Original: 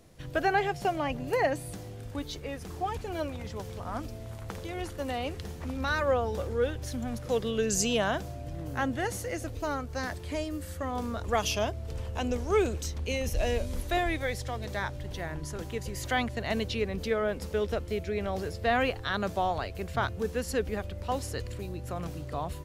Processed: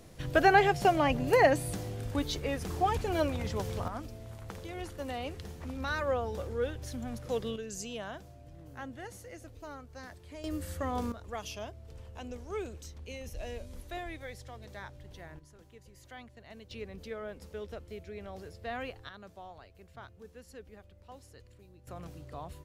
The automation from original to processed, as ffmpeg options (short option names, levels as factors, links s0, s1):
-af "asetnsamples=n=441:p=0,asendcmd='3.88 volume volume -4.5dB;7.56 volume volume -13dB;10.44 volume volume -0.5dB;11.12 volume volume -12dB;15.39 volume volume -20dB;16.71 volume volume -12dB;19.09 volume volume -19.5dB;21.87 volume volume -9dB',volume=1.58"